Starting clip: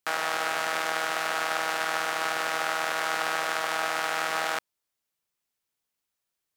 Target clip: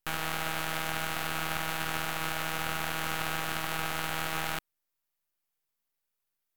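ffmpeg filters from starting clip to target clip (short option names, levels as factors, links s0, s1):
-af "equalizer=f=250:t=o:w=1:g=-10,equalizer=f=4000:t=o:w=1:g=-6,equalizer=f=8000:t=o:w=1:g=-5,equalizer=f=16000:t=o:w=1:g=8,aeval=exprs='max(val(0),0)':c=same"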